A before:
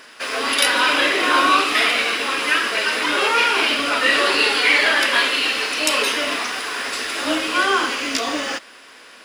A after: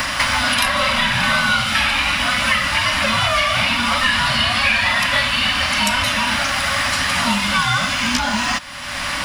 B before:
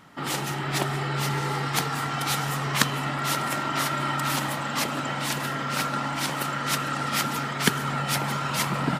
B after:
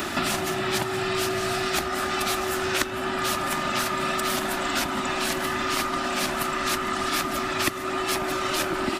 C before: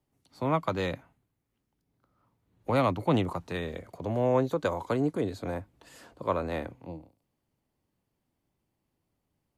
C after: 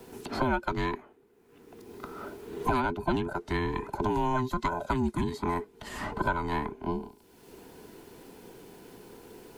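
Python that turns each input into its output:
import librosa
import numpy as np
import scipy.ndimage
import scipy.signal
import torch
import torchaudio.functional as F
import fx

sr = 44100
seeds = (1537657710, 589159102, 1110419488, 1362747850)

y = fx.band_invert(x, sr, width_hz=500)
y = fx.band_squash(y, sr, depth_pct=100)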